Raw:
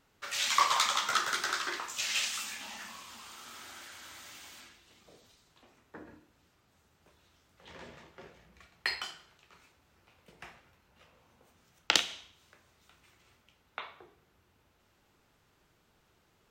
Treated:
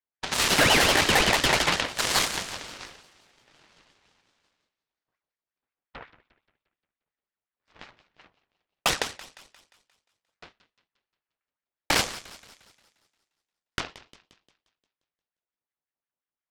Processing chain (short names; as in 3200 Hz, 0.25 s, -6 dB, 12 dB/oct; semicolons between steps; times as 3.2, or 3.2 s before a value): sine folder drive 18 dB, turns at -4.5 dBFS; air absorption 230 m; added harmonics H 2 -8 dB, 5 -42 dB, 6 -13 dB, 7 -14 dB, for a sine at -5 dBFS; expander -26 dBFS; on a send: thinning echo 0.176 s, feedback 50%, high-pass 430 Hz, level -16 dB; on the sum: ring modulator with a swept carrier 1200 Hz, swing 60%, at 5.6 Hz; gain -6 dB